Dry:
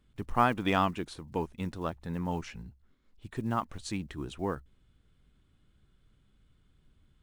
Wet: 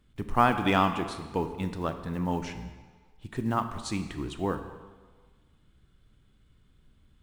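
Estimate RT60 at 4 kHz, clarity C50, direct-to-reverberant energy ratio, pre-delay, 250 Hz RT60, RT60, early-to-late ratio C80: 1.2 s, 9.5 dB, 8.5 dB, 22 ms, 1.2 s, 1.5 s, 11.0 dB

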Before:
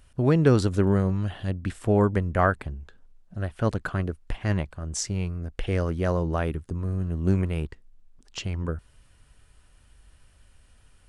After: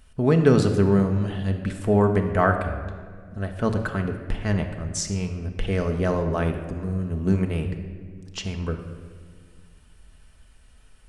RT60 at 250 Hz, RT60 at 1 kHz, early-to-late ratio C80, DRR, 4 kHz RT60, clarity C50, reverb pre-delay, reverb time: 2.5 s, 1.6 s, 9.0 dB, 4.0 dB, 1.1 s, 7.5 dB, 5 ms, 1.8 s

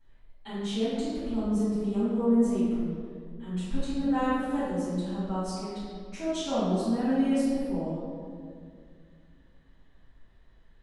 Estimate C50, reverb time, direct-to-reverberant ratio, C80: -3.5 dB, 2.2 s, -15.0 dB, -0.5 dB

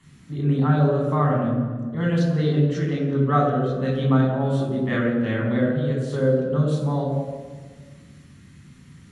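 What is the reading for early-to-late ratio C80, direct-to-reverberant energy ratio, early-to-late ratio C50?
4.5 dB, -3.0 dB, 2.5 dB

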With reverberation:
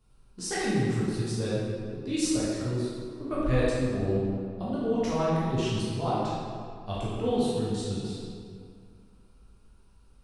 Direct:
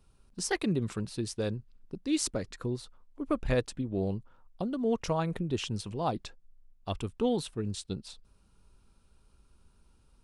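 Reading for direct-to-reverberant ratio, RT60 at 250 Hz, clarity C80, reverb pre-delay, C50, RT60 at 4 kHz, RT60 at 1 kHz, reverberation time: -9.5 dB, 2.4 s, -0.5 dB, 8 ms, -3.5 dB, 1.4 s, 2.2 s, 2.2 s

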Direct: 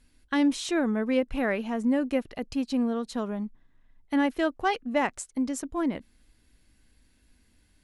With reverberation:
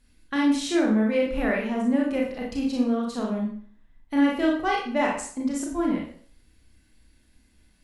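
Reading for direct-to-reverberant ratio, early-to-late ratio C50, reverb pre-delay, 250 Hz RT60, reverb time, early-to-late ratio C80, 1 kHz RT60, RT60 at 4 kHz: -2.5 dB, 3.5 dB, 29 ms, 0.50 s, 0.50 s, 7.5 dB, 0.45 s, 0.45 s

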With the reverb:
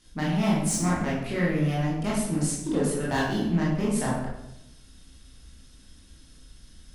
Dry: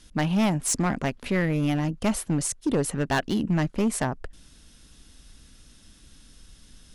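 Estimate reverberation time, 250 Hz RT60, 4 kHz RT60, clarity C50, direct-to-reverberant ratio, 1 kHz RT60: 0.85 s, 1.1 s, 0.60 s, 1.5 dB, -6.0 dB, 0.80 s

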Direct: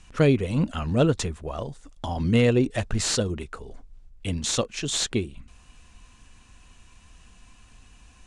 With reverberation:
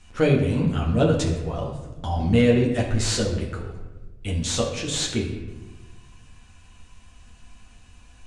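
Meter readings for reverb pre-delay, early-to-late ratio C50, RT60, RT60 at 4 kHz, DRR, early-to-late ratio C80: 9 ms, 5.5 dB, 1.1 s, 0.75 s, -3.0 dB, 8.0 dB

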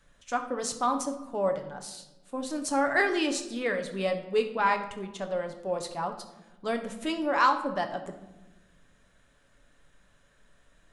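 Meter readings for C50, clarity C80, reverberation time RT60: 9.5 dB, 12.5 dB, 1.1 s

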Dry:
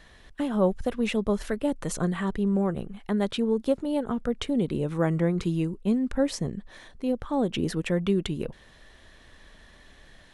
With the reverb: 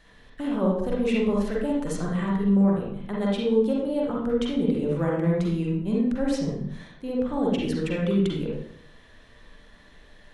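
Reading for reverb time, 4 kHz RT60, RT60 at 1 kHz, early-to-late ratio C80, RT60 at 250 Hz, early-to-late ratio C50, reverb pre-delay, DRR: 0.65 s, 0.50 s, 0.60 s, 5.0 dB, 0.80 s, -0.5 dB, 40 ms, -4.0 dB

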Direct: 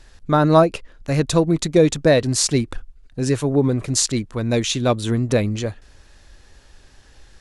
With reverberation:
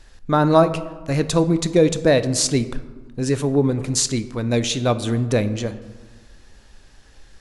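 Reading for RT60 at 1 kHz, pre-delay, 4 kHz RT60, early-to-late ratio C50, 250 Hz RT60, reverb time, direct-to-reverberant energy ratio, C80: 1.4 s, 4 ms, 0.70 s, 14.0 dB, 1.8 s, 1.4 s, 11.5 dB, 15.5 dB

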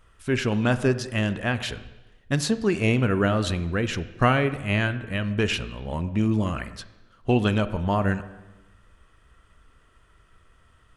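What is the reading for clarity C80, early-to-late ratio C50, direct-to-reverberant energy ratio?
15.5 dB, 14.0 dB, 12.0 dB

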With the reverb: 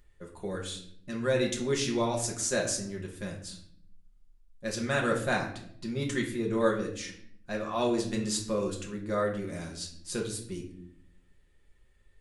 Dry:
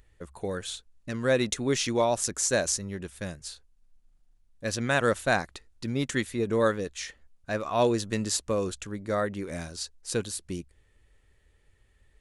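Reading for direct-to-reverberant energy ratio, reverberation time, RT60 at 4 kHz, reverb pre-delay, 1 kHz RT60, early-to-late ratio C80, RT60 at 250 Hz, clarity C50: -1.0 dB, 0.65 s, 0.45 s, 5 ms, 0.55 s, 11.5 dB, 1.0 s, 8.0 dB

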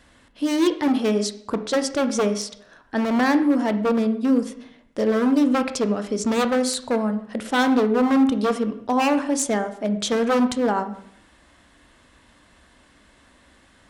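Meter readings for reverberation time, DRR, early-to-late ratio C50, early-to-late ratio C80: 0.65 s, 9.0 dB, 12.0 dB, 15.0 dB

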